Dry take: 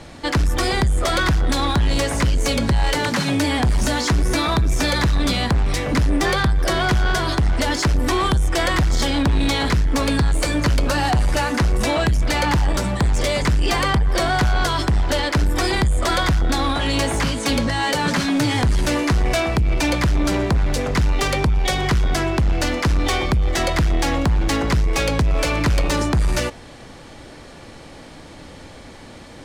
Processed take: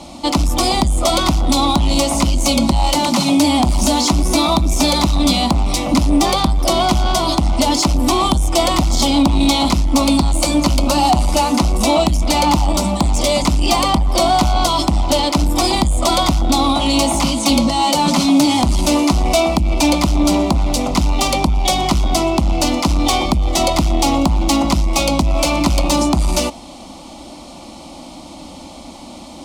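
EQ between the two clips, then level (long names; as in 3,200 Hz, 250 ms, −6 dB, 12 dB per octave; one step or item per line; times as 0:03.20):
high-pass filter 64 Hz 6 dB per octave
phaser with its sweep stopped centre 440 Hz, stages 6
notch filter 1,900 Hz, Q 17
+8.5 dB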